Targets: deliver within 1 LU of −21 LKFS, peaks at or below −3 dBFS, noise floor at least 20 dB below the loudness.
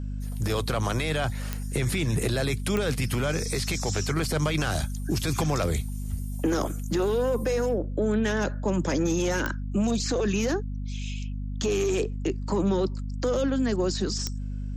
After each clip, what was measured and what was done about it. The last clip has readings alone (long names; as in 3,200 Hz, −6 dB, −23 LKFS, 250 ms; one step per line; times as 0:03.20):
number of clicks 4; mains hum 50 Hz; hum harmonics up to 250 Hz; level of the hum −29 dBFS; integrated loudness −27.5 LKFS; sample peak −12.5 dBFS; target loudness −21.0 LKFS
→ click removal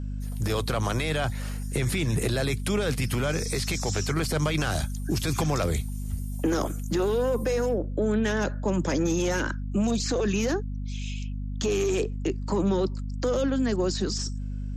number of clicks 0; mains hum 50 Hz; hum harmonics up to 250 Hz; level of the hum −29 dBFS
→ hum removal 50 Hz, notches 5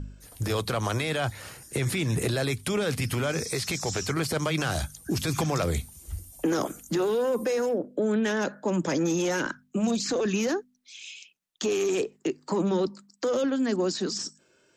mains hum none found; integrated loudness −28.0 LKFS; sample peak −15.0 dBFS; target loudness −21.0 LKFS
→ level +7 dB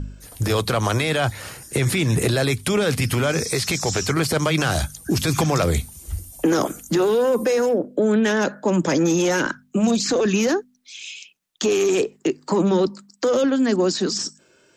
integrated loudness −21.0 LKFS; sample peak −8.0 dBFS; background noise floor −58 dBFS